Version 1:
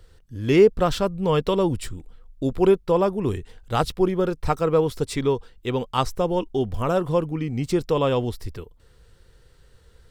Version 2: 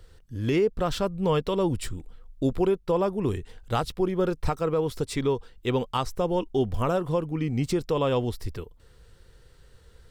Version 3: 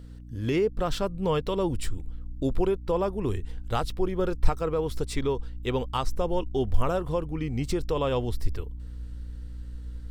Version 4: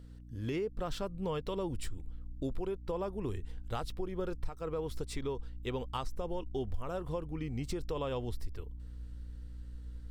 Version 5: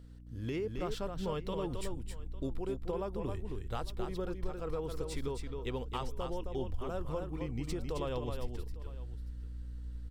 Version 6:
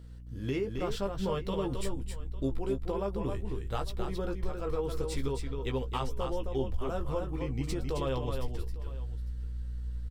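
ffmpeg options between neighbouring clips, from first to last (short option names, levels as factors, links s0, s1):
-af "alimiter=limit=0.178:level=0:latency=1:release=295"
-af "aeval=exprs='val(0)+0.00891*(sin(2*PI*60*n/s)+sin(2*PI*2*60*n/s)/2+sin(2*PI*3*60*n/s)/3+sin(2*PI*4*60*n/s)/4+sin(2*PI*5*60*n/s)/5)':c=same,asubboost=boost=4:cutoff=70,volume=0.841"
-af "acompressor=threshold=0.0631:ratio=6,volume=0.447"
-af "aecho=1:1:267|852:0.531|0.119,volume=0.841"
-filter_complex "[0:a]asplit=2[s0][s1];[s1]adelay=15,volume=0.501[s2];[s0][s2]amix=inputs=2:normalize=0,volume=1.41"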